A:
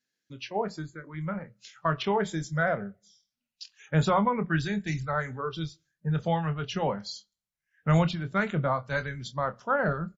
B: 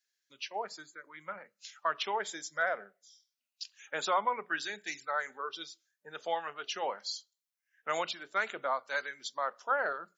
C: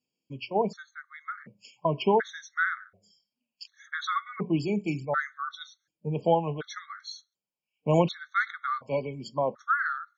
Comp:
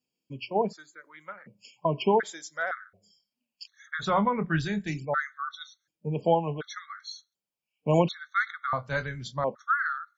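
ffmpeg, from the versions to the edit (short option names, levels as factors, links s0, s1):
-filter_complex "[1:a]asplit=2[s0][s1];[0:a]asplit=2[s2][s3];[2:a]asplit=5[s4][s5][s6][s7][s8];[s4]atrim=end=0.88[s9];[s0]atrim=start=0.64:end=1.52[s10];[s5]atrim=start=1.28:end=2.232[s11];[s1]atrim=start=2.228:end=2.712[s12];[s6]atrim=start=2.708:end=4.15[s13];[s2]atrim=start=3.99:end=5.02[s14];[s7]atrim=start=4.86:end=8.732[s15];[s3]atrim=start=8.728:end=9.442[s16];[s8]atrim=start=9.438[s17];[s9][s10]acrossfade=d=0.24:c1=tri:c2=tri[s18];[s18][s11]acrossfade=d=0.24:c1=tri:c2=tri[s19];[s19][s12]acrossfade=d=0.004:c1=hsin:c2=hsin[s20];[s20][s13]acrossfade=d=0.004:c1=hsin:c2=hsin[s21];[s21][s14]acrossfade=d=0.16:c1=tri:c2=tri[s22];[s22][s15]acrossfade=d=0.16:c1=tri:c2=tri[s23];[s23][s16]acrossfade=d=0.004:c1=hsin:c2=hsin[s24];[s24][s17]acrossfade=d=0.004:c1=hsin:c2=hsin"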